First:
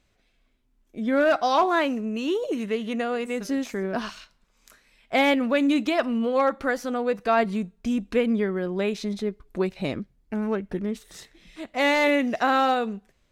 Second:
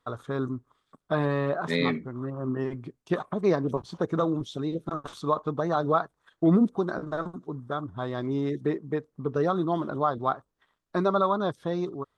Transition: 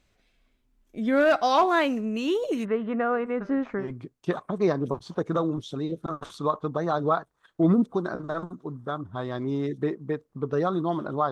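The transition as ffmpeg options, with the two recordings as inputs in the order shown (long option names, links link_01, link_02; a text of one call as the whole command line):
ffmpeg -i cue0.wav -i cue1.wav -filter_complex "[0:a]asplit=3[link_01][link_02][link_03];[link_01]afade=type=out:start_time=2.64:duration=0.02[link_04];[link_02]lowpass=frequency=1300:width_type=q:width=2.1,afade=type=in:start_time=2.64:duration=0.02,afade=type=out:start_time=3.87:duration=0.02[link_05];[link_03]afade=type=in:start_time=3.87:duration=0.02[link_06];[link_04][link_05][link_06]amix=inputs=3:normalize=0,apad=whole_dur=11.31,atrim=end=11.31,atrim=end=3.87,asetpts=PTS-STARTPTS[link_07];[1:a]atrim=start=2.6:end=10.14,asetpts=PTS-STARTPTS[link_08];[link_07][link_08]acrossfade=duration=0.1:curve1=tri:curve2=tri" out.wav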